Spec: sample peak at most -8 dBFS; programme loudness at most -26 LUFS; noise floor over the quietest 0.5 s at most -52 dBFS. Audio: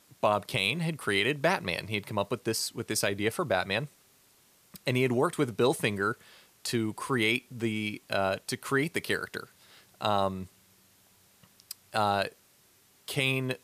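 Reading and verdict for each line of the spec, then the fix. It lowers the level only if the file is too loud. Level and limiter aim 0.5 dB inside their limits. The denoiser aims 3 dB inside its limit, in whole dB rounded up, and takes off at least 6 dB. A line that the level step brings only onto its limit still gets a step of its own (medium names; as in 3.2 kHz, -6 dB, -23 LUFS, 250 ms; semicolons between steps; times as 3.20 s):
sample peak -12.5 dBFS: pass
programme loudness -29.5 LUFS: pass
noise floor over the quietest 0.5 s -63 dBFS: pass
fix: none needed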